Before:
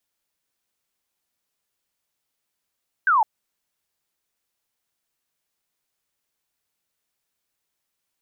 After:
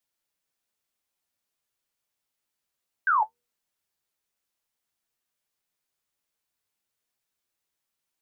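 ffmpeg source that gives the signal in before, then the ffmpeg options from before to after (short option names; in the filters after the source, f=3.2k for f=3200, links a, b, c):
-f lavfi -i "aevalsrc='0.188*clip(t/0.002,0,1)*clip((0.16-t)/0.002,0,1)*sin(2*PI*1600*0.16/log(820/1600)*(exp(log(820/1600)*t/0.16)-1))':d=0.16:s=44100"
-af "bandreject=f=79.79:t=h:w=4,bandreject=f=159.58:t=h:w=4,bandreject=f=239.37:t=h:w=4,bandreject=f=319.16:t=h:w=4,bandreject=f=398.95:t=h:w=4,bandreject=f=478.74:t=h:w=4,flanger=delay=8.1:depth=5.9:regen=53:speed=0.57:shape=sinusoidal"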